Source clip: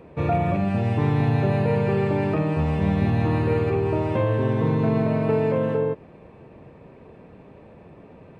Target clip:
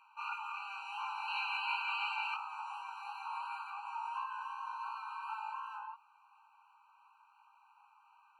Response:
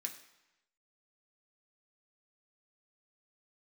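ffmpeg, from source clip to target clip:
-af "asetnsamples=n=441:p=0,asendcmd='1.28 equalizer g 12.5;2.34 equalizer g -4',equalizer=f=3k:t=o:w=1.3:g=3.5,flanger=delay=16.5:depth=7.3:speed=2.8,afftfilt=real='re*eq(mod(floor(b*sr/1024/780),2),1)':imag='im*eq(mod(floor(b*sr/1024/780),2),1)':win_size=1024:overlap=0.75,volume=-2dB"

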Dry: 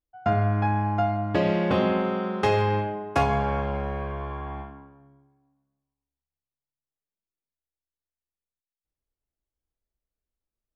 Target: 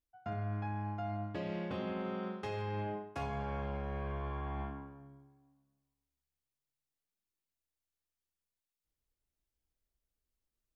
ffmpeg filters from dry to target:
-af "areverse,acompressor=threshold=-35dB:ratio=10,areverse,equalizer=f=790:t=o:w=2.5:g=-3,volume=1dB"

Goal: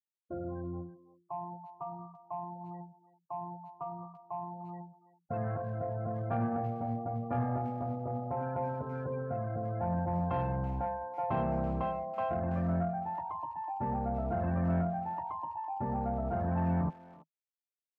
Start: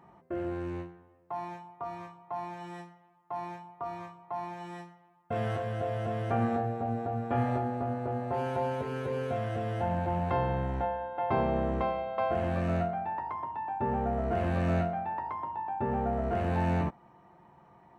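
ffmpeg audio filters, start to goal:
-filter_complex "[0:a]afftfilt=real='re*gte(hypot(re,im),0.0178)':imag='im*gte(hypot(re,im),0.0178)':win_size=1024:overlap=0.75,equalizer=f=160:t=o:w=0.33:g=7,equalizer=f=400:t=o:w=0.33:g=-9,equalizer=f=2k:t=o:w=0.33:g=-11,asoftclip=type=tanh:threshold=-20.5dB,asplit=2[a][b];[b]adelay=330,highpass=300,lowpass=3.4k,asoftclip=type=hard:threshold=-30dB,volume=-16dB[c];[a][c]amix=inputs=2:normalize=0,volume=-2dB"

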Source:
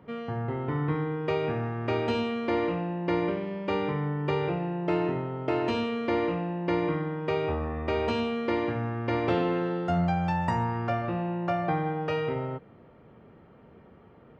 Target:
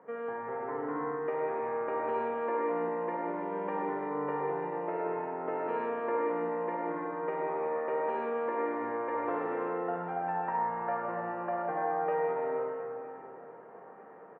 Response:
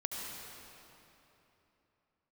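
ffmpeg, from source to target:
-filter_complex "[0:a]acompressor=threshold=-34dB:ratio=3,highpass=f=220:w=0.5412,highpass=f=220:w=1.3066,equalizer=f=240:t=q:w=4:g=-6,equalizer=f=340:t=q:w=4:g=-4,equalizer=f=480:t=q:w=4:g=9,equalizer=f=710:t=q:w=4:g=4,equalizer=f=1k:t=q:w=4:g=9,equalizer=f=1.7k:t=q:w=4:g=7,lowpass=f=2k:w=0.5412,lowpass=f=2k:w=1.3066,aecho=1:1:958|1916|2874|3832|4790:0.0891|0.0526|0.031|0.0183|0.0108[a];[1:a]atrim=start_sample=2205,asetrate=61740,aresample=44100[b];[a][b]afir=irnorm=-1:irlink=0"

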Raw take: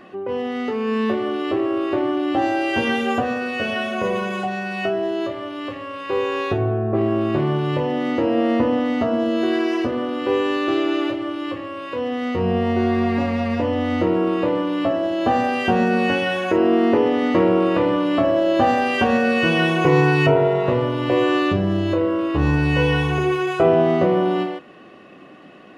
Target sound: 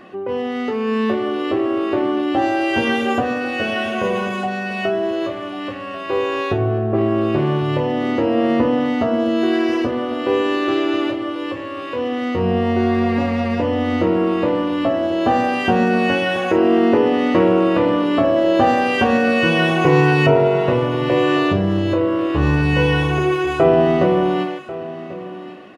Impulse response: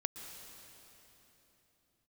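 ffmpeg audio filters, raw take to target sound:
-af "aecho=1:1:1091:0.168,volume=2dB"

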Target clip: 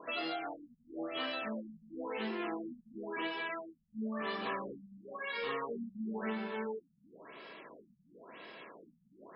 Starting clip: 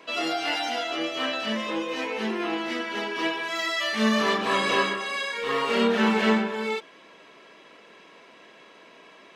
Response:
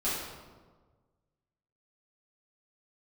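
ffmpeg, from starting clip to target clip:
-af "acompressor=threshold=-35dB:ratio=6,afftfilt=real='re*lt(b*sr/1024,210*pow(5500/210,0.5+0.5*sin(2*PI*0.97*pts/sr)))':imag='im*lt(b*sr/1024,210*pow(5500/210,0.5+0.5*sin(2*PI*0.97*pts/sr)))':win_size=1024:overlap=0.75"

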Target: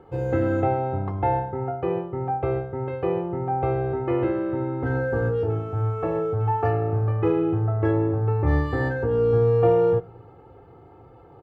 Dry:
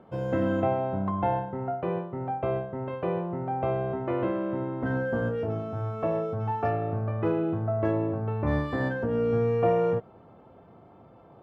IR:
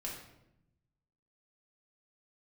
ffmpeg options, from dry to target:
-filter_complex "[0:a]lowshelf=f=210:g=6.5,aecho=1:1:2.4:0.79,asplit=2[a][b];[1:a]atrim=start_sample=2205[c];[b][c]afir=irnorm=-1:irlink=0,volume=-18.5dB[d];[a][d]amix=inputs=2:normalize=0"

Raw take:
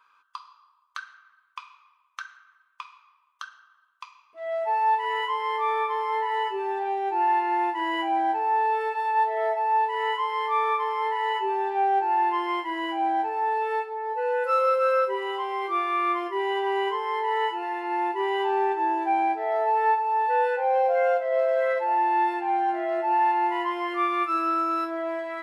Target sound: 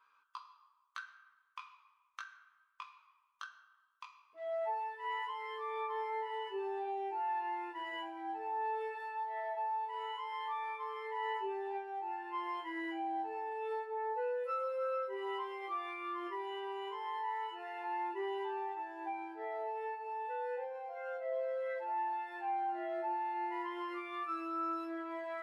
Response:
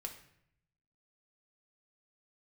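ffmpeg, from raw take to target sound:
-filter_complex "[0:a]asplit=2[a][b];[b]lowpass=4.4k[c];[1:a]atrim=start_sample=2205[d];[c][d]afir=irnorm=-1:irlink=0,volume=-8dB[e];[a][e]amix=inputs=2:normalize=0,acompressor=threshold=-27dB:ratio=6,flanger=delay=15.5:depth=4.1:speed=0.15,volume=-6.5dB"

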